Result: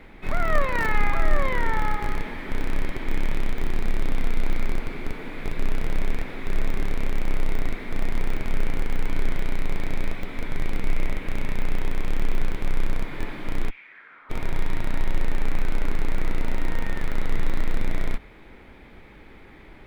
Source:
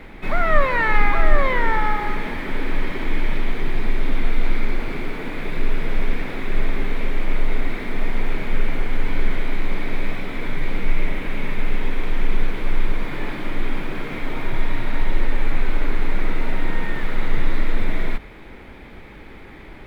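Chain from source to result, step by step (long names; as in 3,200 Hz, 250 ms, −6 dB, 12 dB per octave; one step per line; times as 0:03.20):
0:13.69–0:14.29: resonant band-pass 2,600 Hz → 1,200 Hz, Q 4.5
in parallel at −5.5 dB: comparator with hysteresis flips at −15 dBFS
on the sum: level −6.5 dB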